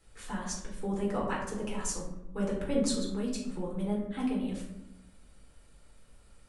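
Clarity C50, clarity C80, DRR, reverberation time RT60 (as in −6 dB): 4.0 dB, 7.0 dB, −4.0 dB, 0.95 s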